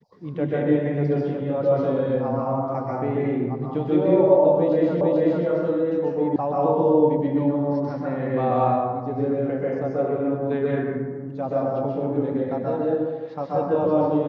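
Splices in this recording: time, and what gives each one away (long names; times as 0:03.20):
0:05.01: the same again, the last 0.44 s
0:06.36: cut off before it has died away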